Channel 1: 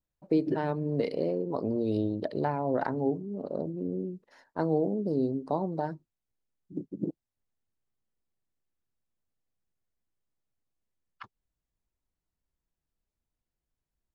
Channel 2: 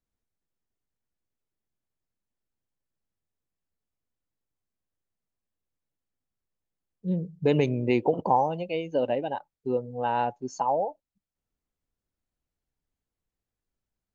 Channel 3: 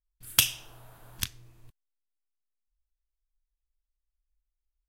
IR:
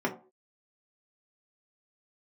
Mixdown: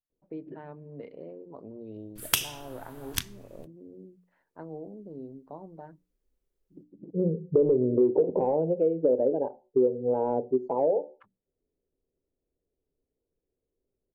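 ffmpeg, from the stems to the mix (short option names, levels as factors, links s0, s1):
-filter_complex "[0:a]lowpass=f=2800:w=0.5412,lowpass=f=2800:w=1.3066,bandreject=f=60:t=h:w=6,bandreject=f=120:t=h:w=6,bandreject=f=180:t=h:w=6,bandreject=f=240:t=h:w=6,bandreject=f=300:t=h:w=6,volume=0.211[s0];[1:a]asoftclip=type=hard:threshold=0.1,lowpass=f=460:t=q:w=4.9,adelay=100,volume=1.06,asplit=2[s1][s2];[s2]volume=0.126[s3];[2:a]adelay=1950,volume=1.26,asplit=2[s4][s5];[s5]volume=0.15[s6];[3:a]atrim=start_sample=2205[s7];[s3][s6]amix=inputs=2:normalize=0[s8];[s8][s7]afir=irnorm=-1:irlink=0[s9];[s0][s1][s4][s9]amix=inputs=4:normalize=0,acompressor=threshold=0.0794:ratio=3"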